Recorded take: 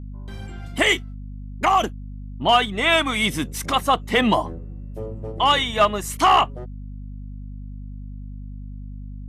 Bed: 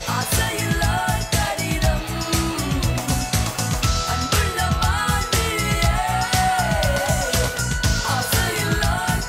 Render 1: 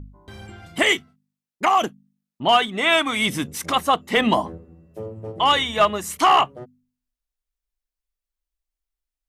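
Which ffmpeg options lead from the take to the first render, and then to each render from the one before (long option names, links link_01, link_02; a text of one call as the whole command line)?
ffmpeg -i in.wav -af "bandreject=frequency=50:width_type=h:width=4,bandreject=frequency=100:width_type=h:width=4,bandreject=frequency=150:width_type=h:width=4,bandreject=frequency=200:width_type=h:width=4,bandreject=frequency=250:width_type=h:width=4" out.wav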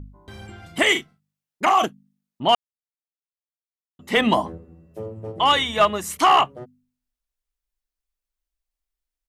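ffmpeg -i in.wav -filter_complex "[0:a]asplit=3[link_01][link_02][link_03];[link_01]afade=type=out:start_time=0.94:duration=0.02[link_04];[link_02]asplit=2[link_05][link_06];[link_06]adelay=42,volume=-7dB[link_07];[link_05][link_07]amix=inputs=2:normalize=0,afade=type=in:start_time=0.94:duration=0.02,afade=type=out:start_time=1.85:duration=0.02[link_08];[link_03]afade=type=in:start_time=1.85:duration=0.02[link_09];[link_04][link_08][link_09]amix=inputs=3:normalize=0,asplit=3[link_10][link_11][link_12];[link_10]atrim=end=2.55,asetpts=PTS-STARTPTS,afade=type=out:start_time=2.546:duration=0.004:curve=hsin[link_13];[link_11]atrim=start=2.55:end=3.99,asetpts=PTS-STARTPTS,volume=0[link_14];[link_12]atrim=start=3.99,asetpts=PTS-STARTPTS,afade=type=in:duration=0.004:curve=hsin[link_15];[link_13][link_14][link_15]concat=n=3:v=0:a=1" out.wav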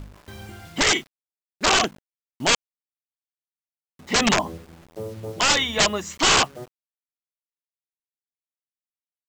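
ffmpeg -i in.wav -af "aresample=16000,aeval=exprs='(mod(3.98*val(0)+1,2)-1)/3.98':channel_layout=same,aresample=44100,acrusher=bits=7:mix=0:aa=0.000001" out.wav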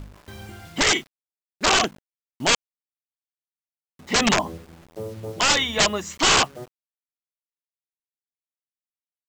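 ffmpeg -i in.wav -af anull out.wav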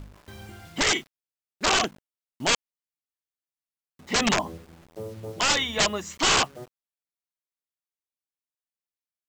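ffmpeg -i in.wav -af "volume=-3.5dB" out.wav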